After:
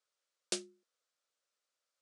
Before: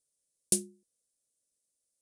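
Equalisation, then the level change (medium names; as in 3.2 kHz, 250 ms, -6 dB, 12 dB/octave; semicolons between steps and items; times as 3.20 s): band-pass 730–4100 Hz; distance through air 55 m; peaking EQ 1.3 kHz +9 dB 0.45 oct; +8.0 dB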